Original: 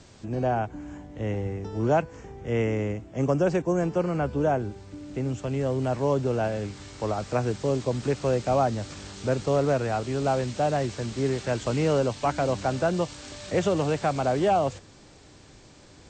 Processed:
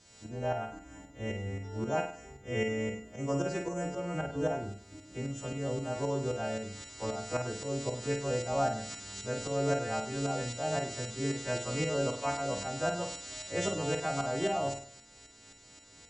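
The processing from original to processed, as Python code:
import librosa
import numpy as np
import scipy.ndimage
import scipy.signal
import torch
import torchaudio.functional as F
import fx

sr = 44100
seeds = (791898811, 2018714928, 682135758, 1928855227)

y = fx.freq_snap(x, sr, grid_st=2)
y = fx.tremolo_shape(y, sr, shape='saw_up', hz=3.8, depth_pct=65)
y = fx.room_flutter(y, sr, wall_m=8.6, rt60_s=0.5)
y = F.gain(torch.from_numpy(y), -5.5).numpy()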